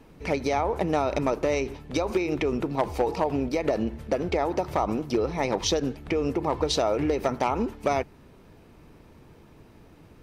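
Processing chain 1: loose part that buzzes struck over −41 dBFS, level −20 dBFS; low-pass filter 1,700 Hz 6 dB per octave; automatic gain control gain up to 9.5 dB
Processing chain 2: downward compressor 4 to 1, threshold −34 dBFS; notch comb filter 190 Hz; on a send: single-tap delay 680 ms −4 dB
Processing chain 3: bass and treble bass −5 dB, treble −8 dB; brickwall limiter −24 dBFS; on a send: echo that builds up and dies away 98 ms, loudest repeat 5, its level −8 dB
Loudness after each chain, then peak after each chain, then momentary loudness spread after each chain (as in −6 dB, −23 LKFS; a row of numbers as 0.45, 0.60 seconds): −18.5, −37.0, −30.5 LKFS; −4.0, −20.5, −17.0 dBFS; 4, 17, 10 LU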